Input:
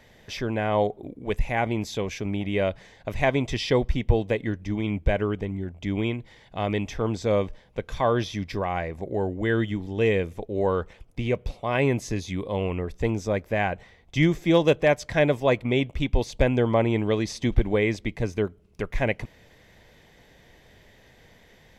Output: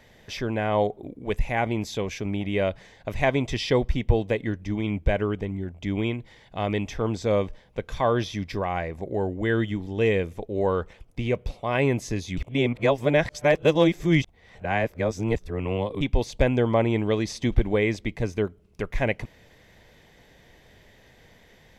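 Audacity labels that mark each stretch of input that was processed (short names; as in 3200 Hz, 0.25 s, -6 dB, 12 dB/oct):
12.370000	16.010000	reverse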